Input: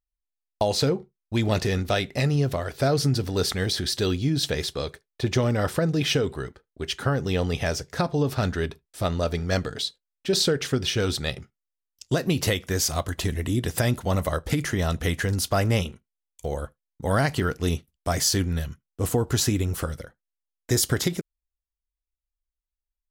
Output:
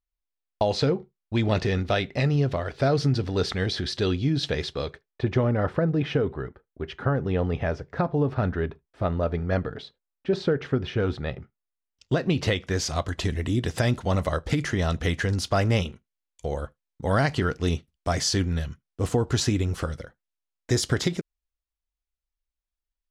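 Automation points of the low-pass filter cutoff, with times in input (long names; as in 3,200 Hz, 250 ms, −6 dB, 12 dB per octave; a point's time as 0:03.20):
0:04.83 4,000 Hz
0:05.45 1,700 Hz
0:11.38 1,700 Hz
0:12.29 3,600 Hz
0:13.17 6,000 Hz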